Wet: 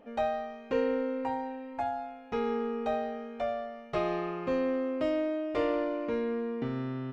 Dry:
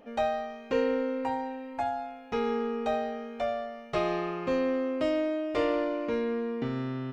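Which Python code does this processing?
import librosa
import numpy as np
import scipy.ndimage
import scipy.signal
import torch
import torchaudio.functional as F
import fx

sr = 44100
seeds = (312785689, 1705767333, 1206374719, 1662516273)

y = fx.high_shelf(x, sr, hz=3500.0, db=-7.0)
y = F.gain(torch.from_numpy(y), -1.5).numpy()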